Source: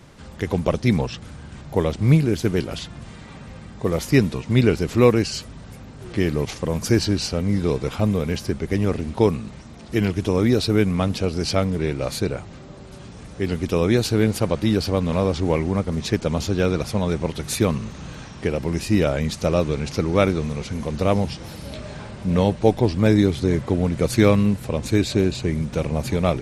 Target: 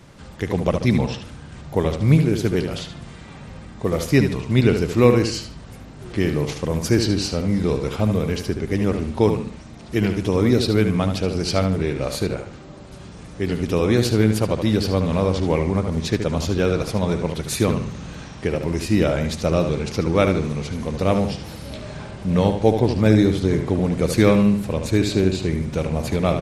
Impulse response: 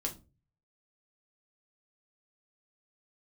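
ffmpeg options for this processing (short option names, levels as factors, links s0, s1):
-filter_complex "[0:a]asplit=2[s0][s1];[s1]adelay=74,lowpass=f=4900:p=1,volume=0.447,asplit=2[s2][s3];[s3]adelay=74,lowpass=f=4900:p=1,volume=0.37,asplit=2[s4][s5];[s5]adelay=74,lowpass=f=4900:p=1,volume=0.37,asplit=2[s6][s7];[s7]adelay=74,lowpass=f=4900:p=1,volume=0.37[s8];[s0][s2][s4][s6][s8]amix=inputs=5:normalize=0"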